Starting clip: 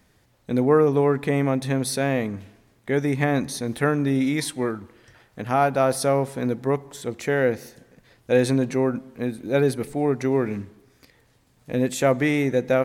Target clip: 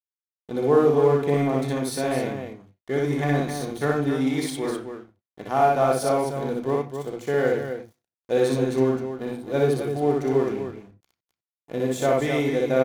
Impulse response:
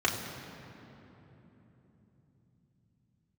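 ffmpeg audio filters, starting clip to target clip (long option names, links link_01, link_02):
-filter_complex "[0:a]aeval=exprs='sgn(val(0))*max(abs(val(0))-0.0126,0)':channel_layout=same,aecho=1:1:61.22|262.4:0.891|0.447,asplit=2[link_01][link_02];[1:a]atrim=start_sample=2205,atrim=end_sample=4410[link_03];[link_02][link_03]afir=irnorm=-1:irlink=0,volume=-12dB[link_04];[link_01][link_04]amix=inputs=2:normalize=0,volume=-6dB"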